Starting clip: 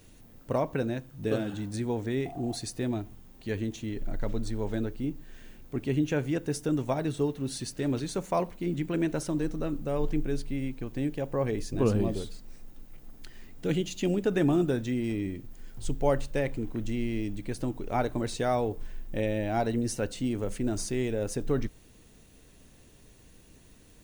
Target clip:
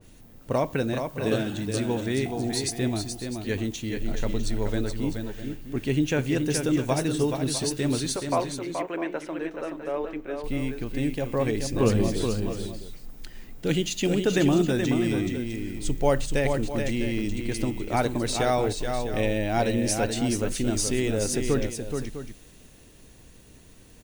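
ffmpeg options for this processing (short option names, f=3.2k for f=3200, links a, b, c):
-filter_complex "[0:a]asettb=1/sr,asplit=3[a][b][c];[a]atrim=end=8.164[d];[b]atrim=start=8.16:end=10.44,asetpts=PTS-STARTPTS,afade=t=in:d=0.004:c=qsin,afade=t=out:st=2.276:d=0.004:c=qsin,acrossover=split=350 2600:gain=0.0794 1 0.0891[e][f][g];[e][f][g]amix=inputs=3:normalize=0[h];[c]atrim=start=10.436[i];[d][h]acrossfade=d=0.004:c1=hsin:c2=qsin[j];[j][i]acrossfade=d=0.004:c1=qsin:c2=hsin,aecho=1:1:426|653:0.501|0.237,adynamicequalizer=threshold=0.00398:dfrequency=1900:dqfactor=0.7:tfrequency=1900:tqfactor=0.7:attack=5:release=100:ratio=0.375:range=3:mode=boostabove:tftype=highshelf,volume=3dB"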